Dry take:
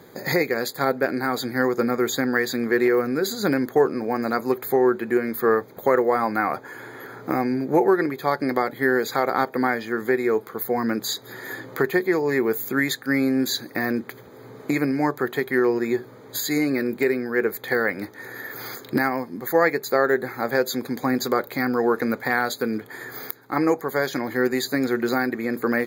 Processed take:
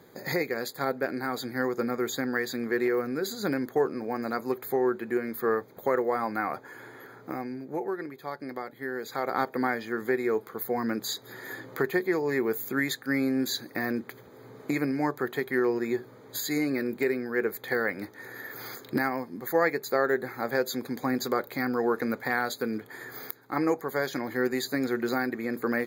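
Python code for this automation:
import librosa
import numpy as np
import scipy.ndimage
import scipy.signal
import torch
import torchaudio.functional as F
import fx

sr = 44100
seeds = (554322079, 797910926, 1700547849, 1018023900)

y = fx.gain(x, sr, db=fx.line((6.88, -7.0), (7.65, -14.0), (8.93, -14.0), (9.37, -5.5)))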